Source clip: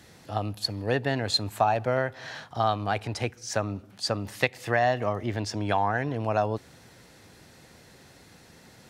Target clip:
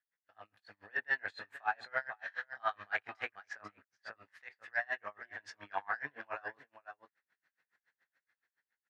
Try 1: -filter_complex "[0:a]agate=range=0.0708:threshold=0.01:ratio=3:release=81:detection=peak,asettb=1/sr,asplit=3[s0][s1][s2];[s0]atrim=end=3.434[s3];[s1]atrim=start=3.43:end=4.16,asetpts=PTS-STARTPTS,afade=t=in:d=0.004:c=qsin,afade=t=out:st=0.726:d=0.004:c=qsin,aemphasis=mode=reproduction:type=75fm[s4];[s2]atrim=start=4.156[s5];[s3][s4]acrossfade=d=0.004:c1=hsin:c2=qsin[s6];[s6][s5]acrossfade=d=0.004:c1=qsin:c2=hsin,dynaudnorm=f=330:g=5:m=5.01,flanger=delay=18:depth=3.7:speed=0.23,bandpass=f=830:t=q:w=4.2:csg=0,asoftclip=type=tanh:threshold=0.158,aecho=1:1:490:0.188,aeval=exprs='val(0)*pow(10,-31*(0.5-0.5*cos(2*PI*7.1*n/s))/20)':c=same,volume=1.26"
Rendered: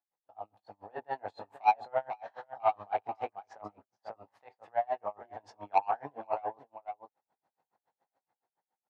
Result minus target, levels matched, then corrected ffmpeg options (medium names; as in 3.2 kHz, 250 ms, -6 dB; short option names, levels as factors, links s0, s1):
2 kHz band -16.0 dB
-filter_complex "[0:a]agate=range=0.0708:threshold=0.01:ratio=3:release=81:detection=peak,asettb=1/sr,asplit=3[s0][s1][s2];[s0]atrim=end=3.434[s3];[s1]atrim=start=3.43:end=4.16,asetpts=PTS-STARTPTS,afade=t=in:d=0.004:c=qsin,afade=t=out:st=0.726:d=0.004:c=qsin,aemphasis=mode=reproduction:type=75fm[s4];[s2]atrim=start=4.156[s5];[s3][s4]acrossfade=d=0.004:c1=hsin:c2=qsin[s6];[s6][s5]acrossfade=d=0.004:c1=qsin:c2=hsin,dynaudnorm=f=330:g=5:m=5.01,flanger=delay=18:depth=3.7:speed=0.23,bandpass=f=1700:t=q:w=4.2:csg=0,asoftclip=type=tanh:threshold=0.158,aecho=1:1:490:0.188,aeval=exprs='val(0)*pow(10,-31*(0.5-0.5*cos(2*PI*7.1*n/s))/20)':c=same,volume=1.26"